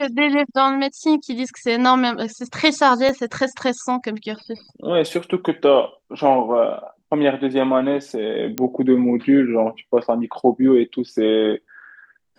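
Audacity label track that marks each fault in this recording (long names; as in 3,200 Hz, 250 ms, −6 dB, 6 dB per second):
3.090000	3.090000	drop-out 2.2 ms
8.580000	8.580000	click −7 dBFS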